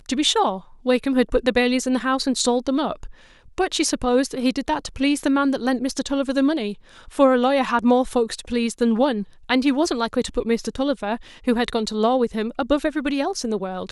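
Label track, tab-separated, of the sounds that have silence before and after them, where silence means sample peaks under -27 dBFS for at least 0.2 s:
0.860000	3.060000	sound
3.580000	6.730000	sound
7.180000	9.230000	sound
9.490000	11.160000	sound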